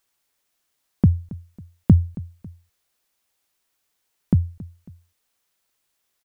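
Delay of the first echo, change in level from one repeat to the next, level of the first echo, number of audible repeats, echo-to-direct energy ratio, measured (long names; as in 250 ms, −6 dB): 274 ms, −7.0 dB, −19.5 dB, 2, −18.5 dB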